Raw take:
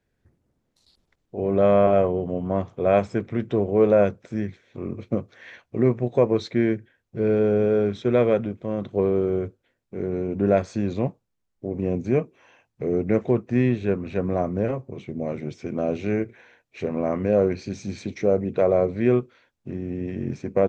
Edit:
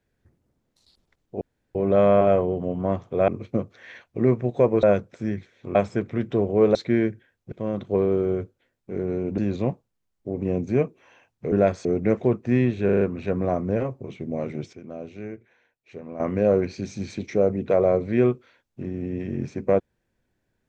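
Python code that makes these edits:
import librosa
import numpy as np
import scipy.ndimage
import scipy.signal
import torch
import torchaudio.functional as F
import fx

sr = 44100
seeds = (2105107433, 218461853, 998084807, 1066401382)

y = fx.edit(x, sr, fx.insert_room_tone(at_s=1.41, length_s=0.34),
    fx.swap(start_s=2.94, length_s=1.0, other_s=4.86, other_length_s=1.55),
    fx.cut(start_s=7.18, length_s=1.38),
    fx.move(start_s=10.42, length_s=0.33, to_s=12.89),
    fx.stutter(start_s=13.89, slice_s=0.04, count=5),
    fx.clip_gain(start_s=15.61, length_s=1.47, db=-11.5), tone=tone)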